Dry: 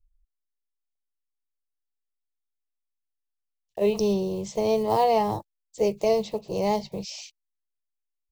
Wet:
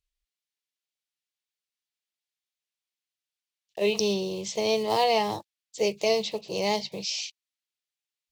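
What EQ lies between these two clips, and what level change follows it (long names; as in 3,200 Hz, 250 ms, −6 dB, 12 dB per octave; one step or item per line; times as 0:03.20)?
meter weighting curve D
−2.0 dB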